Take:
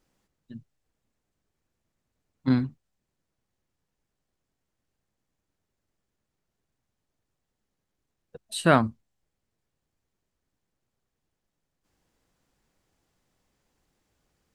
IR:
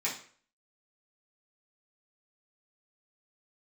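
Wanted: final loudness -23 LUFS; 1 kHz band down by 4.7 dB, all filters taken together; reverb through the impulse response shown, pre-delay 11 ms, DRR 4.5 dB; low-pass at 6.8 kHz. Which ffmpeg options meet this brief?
-filter_complex "[0:a]lowpass=6800,equalizer=f=1000:t=o:g=-7,asplit=2[s0][s1];[1:a]atrim=start_sample=2205,adelay=11[s2];[s1][s2]afir=irnorm=-1:irlink=0,volume=0.299[s3];[s0][s3]amix=inputs=2:normalize=0,volume=1.41"

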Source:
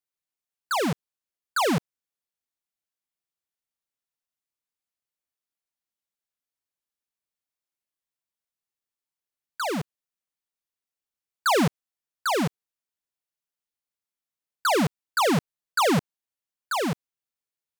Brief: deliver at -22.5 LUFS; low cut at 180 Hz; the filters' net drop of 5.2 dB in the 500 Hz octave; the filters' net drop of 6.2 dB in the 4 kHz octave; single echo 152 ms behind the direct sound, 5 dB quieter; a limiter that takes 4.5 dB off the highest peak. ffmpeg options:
-af "highpass=180,equalizer=f=500:t=o:g=-6.5,equalizer=f=4000:t=o:g=-8,alimiter=limit=0.112:level=0:latency=1,aecho=1:1:152:0.562,volume=2.11"

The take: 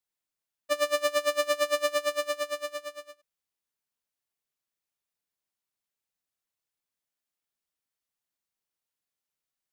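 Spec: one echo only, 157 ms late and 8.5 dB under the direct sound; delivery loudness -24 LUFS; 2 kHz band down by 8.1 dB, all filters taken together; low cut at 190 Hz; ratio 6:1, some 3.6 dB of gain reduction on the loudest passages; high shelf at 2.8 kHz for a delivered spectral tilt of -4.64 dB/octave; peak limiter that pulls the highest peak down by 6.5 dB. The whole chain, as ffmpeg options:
-af "highpass=190,equalizer=f=2000:t=o:g=-8,highshelf=f=2800:g=-4,acompressor=threshold=0.0447:ratio=6,alimiter=level_in=1.5:limit=0.0631:level=0:latency=1,volume=0.668,aecho=1:1:157:0.376,volume=4.22"

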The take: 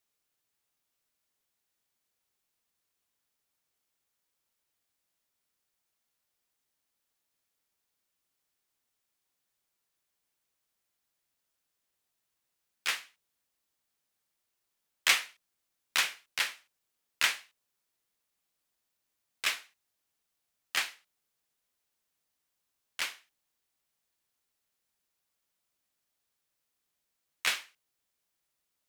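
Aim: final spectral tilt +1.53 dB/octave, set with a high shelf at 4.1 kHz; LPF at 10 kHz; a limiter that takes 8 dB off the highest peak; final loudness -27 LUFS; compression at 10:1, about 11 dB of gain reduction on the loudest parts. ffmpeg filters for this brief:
-af "lowpass=10000,highshelf=f=4100:g=-8.5,acompressor=threshold=0.0224:ratio=10,volume=6.31,alimiter=limit=0.355:level=0:latency=1"

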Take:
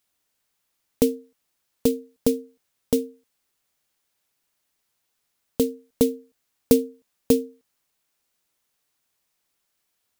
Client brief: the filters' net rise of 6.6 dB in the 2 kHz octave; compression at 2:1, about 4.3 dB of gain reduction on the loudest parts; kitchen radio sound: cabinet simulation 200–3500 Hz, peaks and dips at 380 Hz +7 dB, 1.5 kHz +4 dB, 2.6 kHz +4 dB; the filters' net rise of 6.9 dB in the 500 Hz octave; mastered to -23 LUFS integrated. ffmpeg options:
-af "equalizer=f=500:t=o:g=5,equalizer=f=2000:t=o:g=5,acompressor=threshold=0.141:ratio=2,highpass=200,equalizer=f=380:t=q:w=4:g=7,equalizer=f=1500:t=q:w=4:g=4,equalizer=f=2600:t=q:w=4:g=4,lowpass=f=3500:w=0.5412,lowpass=f=3500:w=1.3066,volume=1.12"

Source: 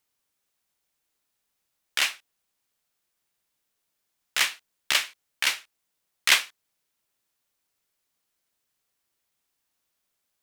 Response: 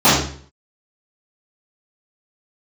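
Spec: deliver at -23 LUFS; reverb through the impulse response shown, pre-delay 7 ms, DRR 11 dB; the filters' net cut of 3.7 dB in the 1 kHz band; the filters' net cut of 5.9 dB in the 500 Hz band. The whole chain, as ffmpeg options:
-filter_complex "[0:a]equalizer=f=500:t=o:g=-6.5,equalizer=f=1000:t=o:g=-3.5,asplit=2[s0][s1];[1:a]atrim=start_sample=2205,adelay=7[s2];[s1][s2]afir=irnorm=-1:irlink=0,volume=0.0112[s3];[s0][s3]amix=inputs=2:normalize=0,volume=1.33"

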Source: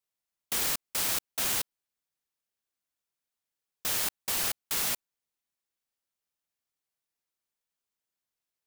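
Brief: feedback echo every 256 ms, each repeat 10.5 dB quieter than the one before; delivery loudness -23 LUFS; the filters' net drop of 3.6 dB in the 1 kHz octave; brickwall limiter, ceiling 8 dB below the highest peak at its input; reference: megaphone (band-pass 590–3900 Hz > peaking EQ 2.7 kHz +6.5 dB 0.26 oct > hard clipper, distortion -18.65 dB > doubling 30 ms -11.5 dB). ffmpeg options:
-filter_complex "[0:a]equalizer=f=1000:t=o:g=-4,alimiter=level_in=1.06:limit=0.0631:level=0:latency=1,volume=0.944,highpass=590,lowpass=3900,equalizer=f=2700:t=o:w=0.26:g=6.5,aecho=1:1:256|512|768:0.299|0.0896|0.0269,asoftclip=type=hard:threshold=0.0168,asplit=2[s0][s1];[s1]adelay=30,volume=0.266[s2];[s0][s2]amix=inputs=2:normalize=0,volume=8.91"

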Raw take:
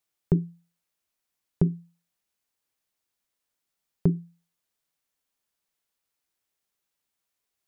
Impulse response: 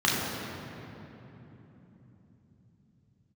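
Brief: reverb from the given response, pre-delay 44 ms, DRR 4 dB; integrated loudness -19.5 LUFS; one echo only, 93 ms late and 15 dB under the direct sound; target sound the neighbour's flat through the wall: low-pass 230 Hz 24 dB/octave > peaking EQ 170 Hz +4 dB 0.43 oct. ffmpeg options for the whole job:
-filter_complex "[0:a]aecho=1:1:93:0.178,asplit=2[s0][s1];[1:a]atrim=start_sample=2205,adelay=44[s2];[s1][s2]afir=irnorm=-1:irlink=0,volume=0.106[s3];[s0][s3]amix=inputs=2:normalize=0,lowpass=f=230:w=0.5412,lowpass=f=230:w=1.3066,equalizer=f=170:t=o:w=0.43:g=4,volume=2.24"

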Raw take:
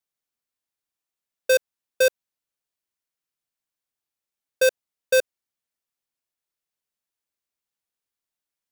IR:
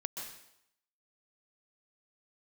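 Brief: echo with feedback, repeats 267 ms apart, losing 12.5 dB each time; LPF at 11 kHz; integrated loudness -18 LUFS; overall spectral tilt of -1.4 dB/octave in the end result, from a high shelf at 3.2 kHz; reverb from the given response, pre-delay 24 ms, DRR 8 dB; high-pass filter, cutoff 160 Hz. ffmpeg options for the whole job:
-filter_complex "[0:a]highpass=160,lowpass=11000,highshelf=f=3200:g=-7.5,aecho=1:1:267|534|801:0.237|0.0569|0.0137,asplit=2[s0][s1];[1:a]atrim=start_sample=2205,adelay=24[s2];[s1][s2]afir=irnorm=-1:irlink=0,volume=0.376[s3];[s0][s3]amix=inputs=2:normalize=0,volume=2.51"

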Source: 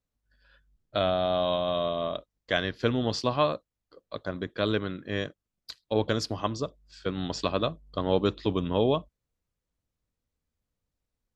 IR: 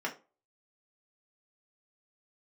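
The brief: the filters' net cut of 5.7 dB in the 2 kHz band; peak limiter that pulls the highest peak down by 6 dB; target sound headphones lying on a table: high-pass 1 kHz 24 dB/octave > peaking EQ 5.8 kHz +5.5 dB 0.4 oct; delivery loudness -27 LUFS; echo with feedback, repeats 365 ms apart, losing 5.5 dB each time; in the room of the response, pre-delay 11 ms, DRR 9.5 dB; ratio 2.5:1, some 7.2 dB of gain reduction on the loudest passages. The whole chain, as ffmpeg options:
-filter_complex "[0:a]equalizer=f=2000:t=o:g=-8,acompressor=threshold=0.0316:ratio=2.5,alimiter=limit=0.0841:level=0:latency=1,aecho=1:1:365|730|1095|1460|1825|2190|2555:0.531|0.281|0.149|0.079|0.0419|0.0222|0.0118,asplit=2[s0][s1];[1:a]atrim=start_sample=2205,adelay=11[s2];[s1][s2]afir=irnorm=-1:irlink=0,volume=0.178[s3];[s0][s3]amix=inputs=2:normalize=0,highpass=f=1000:w=0.5412,highpass=f=1000:w=1.3066,equalizer=f=5800:t=o:w=0.4:g=5.5,volume=5.62"

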